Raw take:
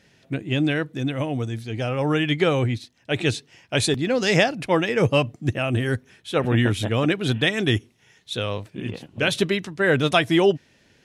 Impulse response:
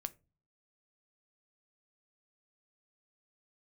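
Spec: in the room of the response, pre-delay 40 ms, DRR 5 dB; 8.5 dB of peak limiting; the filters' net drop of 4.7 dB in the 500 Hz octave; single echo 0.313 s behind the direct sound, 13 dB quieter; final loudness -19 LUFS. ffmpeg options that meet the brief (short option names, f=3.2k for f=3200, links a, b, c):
-filter_complex "[0:a]equalizer=f=500:t=o:g=-6,alimiter=limit=-13.5dB:level=0:latency=1,aecho=1:1:313:0.224,asplit=2[a][b];[1:a]atrim=start_sample=2205,adelay=40[c];[b][c]afir=irnorm=-1:irlink=0,volume=-2.5dB[d];[a][d]amix=inputs=2:normalize=0,volume=5.5dB"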